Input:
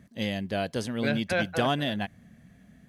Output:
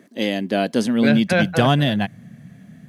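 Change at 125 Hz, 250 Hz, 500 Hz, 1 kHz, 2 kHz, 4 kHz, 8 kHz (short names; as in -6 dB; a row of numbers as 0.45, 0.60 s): +11.5, +12.0, +8.5, +8.0, +7.5, +7.5, +7.5 dB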